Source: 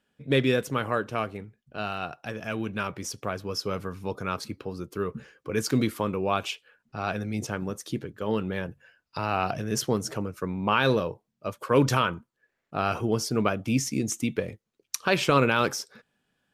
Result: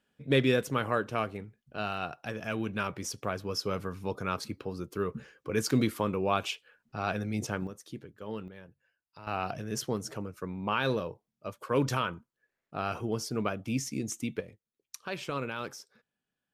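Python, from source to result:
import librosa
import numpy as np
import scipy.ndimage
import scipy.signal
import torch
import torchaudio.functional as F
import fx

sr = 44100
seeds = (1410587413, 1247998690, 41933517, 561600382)

y = fx.gain(x, sr, db=fx.steps((0.0, -2.0), (7.67, -11.0), (8.48, -18.0), (9.27, -6.5), (14.41, -13.5)))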